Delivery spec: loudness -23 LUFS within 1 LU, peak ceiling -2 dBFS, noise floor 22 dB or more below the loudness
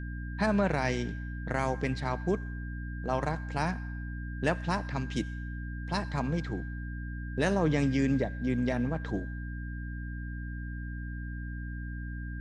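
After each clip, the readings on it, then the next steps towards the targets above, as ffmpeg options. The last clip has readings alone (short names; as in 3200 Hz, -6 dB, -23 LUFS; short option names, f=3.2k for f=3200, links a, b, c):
hum 60 Hz; harmonics up to 300 Hz; hum level -35 dBFS; steady tone 1600 Hz; tone level -46 dBFS; loudness -33.0 LUFS; peak -13.0 dBFS; loudness target -23.0 LUFS
-> -af "bandreject=f=60:t=h:w=6,bandreject=f=120:t=h:w=6,bandreject=f=180:t=h:w=6,bandreject=f=240:t=h:w=6,bandreject=f=300:t=h:w=6"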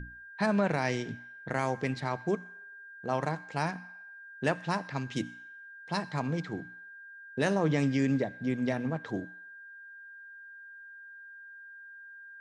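hum none; steady tone 1600 Hz; tone level -46 dBFS
-> -af "bandreject=f=1.6k:w=30"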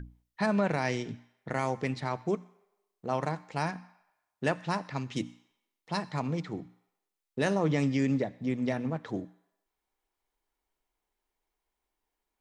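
steady tone none; loudness -32.0 LUFS; peak -13.5 dBFS; loudness target -23.0 LUFS
-> -af "volume=9dB"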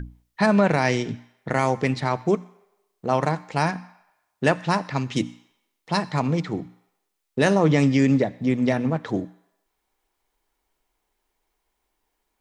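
loudness -23.0 LUFS; peak -4.5 dBFS; noise floor -77 dBFS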